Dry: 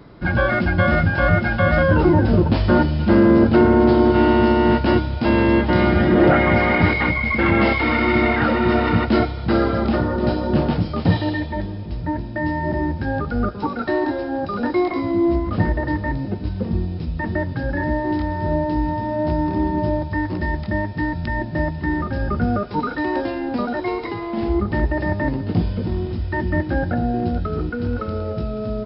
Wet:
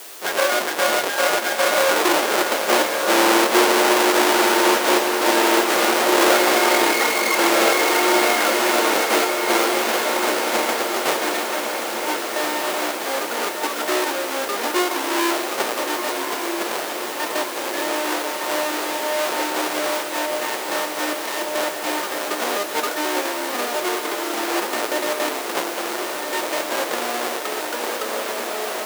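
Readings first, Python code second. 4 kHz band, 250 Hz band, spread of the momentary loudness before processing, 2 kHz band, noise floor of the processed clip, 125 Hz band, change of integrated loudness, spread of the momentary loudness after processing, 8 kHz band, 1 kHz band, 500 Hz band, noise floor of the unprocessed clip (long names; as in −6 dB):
+12.5 dB, −7.5 dB, 10 LU, +2.5 dB, −28 dBFS, below −30 dB, 0.0 dB, 9 LU, can't be measured, +3.0 dB, 0.0 dB, −29 dBFS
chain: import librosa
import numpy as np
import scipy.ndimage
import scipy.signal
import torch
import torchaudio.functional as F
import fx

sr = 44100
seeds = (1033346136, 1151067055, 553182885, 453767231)

p1 = fx.halfwave_hold(x, sr)
p2 = fx.quant_dither(p1, sr, seeds[0], bits=6, dither='triangular')
p3 = scipy.signal.sosfilt(scipy.signal.butter(4, 400.0, 'highpass', fs=sr, output='sos'), p2)
p4 = p3 + fx.echo_diffused(p3, sr, ms=1305, feedback_pct=59, wet_db=-5.5, dry=0)
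y = p4 * 10.0 ** (-2.5 / 20.0)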